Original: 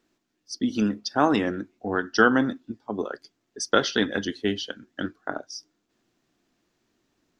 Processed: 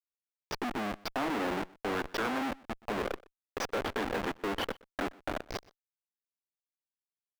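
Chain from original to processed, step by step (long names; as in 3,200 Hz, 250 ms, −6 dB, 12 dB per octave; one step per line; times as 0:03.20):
Butterworth high-pass 160 Hz 72 dB per octave
floating-point word with a short mantissa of 2 bits
high-shelf EQ 2,800 Hz −5 dB
downward compressor 8 to 1, threshold −28 dBFS, peak gain reduction 14.5 dB
comparator with hysteresis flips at −35 dBFS
bass and treble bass −14 dB, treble −13 dB
single-tap delay 123 ms −23.5 dB
level +8.5 dB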